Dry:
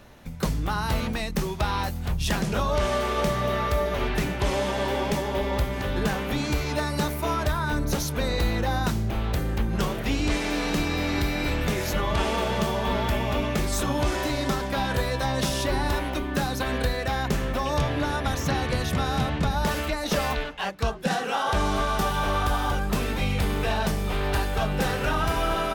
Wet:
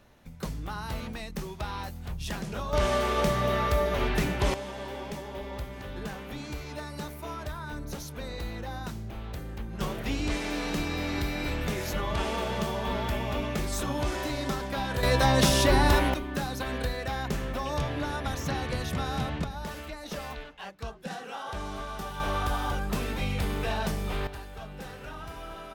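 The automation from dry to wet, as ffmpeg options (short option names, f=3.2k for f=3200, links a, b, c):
-af "asetnsamples=n=441:p=0,asendcmd='2.73 volume volume -1dB;4.54 volume volume -11.5dB;9.81 volume volume -5dB;15.03 volume volume 4dB;16.14 volume volume -5.5dB;19.44 volume volume -12dB;22.2 volume volume -4.5dB;24.27 volume volume -16dB',volume=-9dB"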